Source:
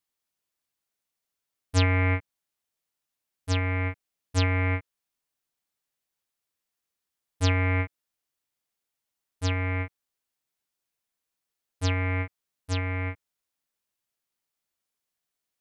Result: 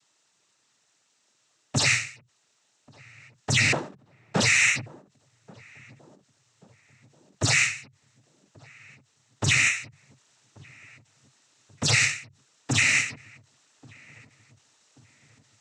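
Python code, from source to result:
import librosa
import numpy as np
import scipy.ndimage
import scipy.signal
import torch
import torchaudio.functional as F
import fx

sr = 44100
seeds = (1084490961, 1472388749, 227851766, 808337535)

p1 = fx.sample_sort(x, sr, block=256, at=(3.72, 4.4))
p2 = fx.rider(p1, sr, range_db=4, speed_s=0.5)
p3 = fx.fold_sine(p2, sr, drive_db=19, ceiling_db=-15.0)
p4 = fx.noise_vocoder(p3, sr, seeds[0], bands=12)
p5 = p4 + fx.echo_filtered(p4, sr, ms=1134, feedback_pct=50, hz=1100.0, wet_db=-22.5, dry=0)
y = fx.end_taper(p5, sr, db_per_s=130.0)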